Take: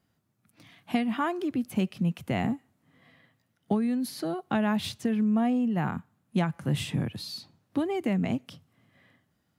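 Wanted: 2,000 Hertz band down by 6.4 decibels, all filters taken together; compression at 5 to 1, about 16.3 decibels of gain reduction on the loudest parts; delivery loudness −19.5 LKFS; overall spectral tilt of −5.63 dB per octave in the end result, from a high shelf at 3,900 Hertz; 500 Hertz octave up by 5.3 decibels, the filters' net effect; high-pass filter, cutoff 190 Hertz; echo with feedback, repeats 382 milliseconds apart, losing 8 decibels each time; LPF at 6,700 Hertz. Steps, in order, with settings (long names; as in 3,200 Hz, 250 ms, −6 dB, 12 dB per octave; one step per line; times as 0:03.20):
high-pass filter 190 Hz
low-pass filter 6,700 Hz
parametric band 500 Hz +8 dB
parametric band 2,000 Hz −7.5 dB
high-shelf EQ 3,900 Hz −7 dB
downward compressor 5 to 1, threshold −40 dBFS
repeating echo 382 ms, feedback 40%, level −8 dB
level +23.5 dB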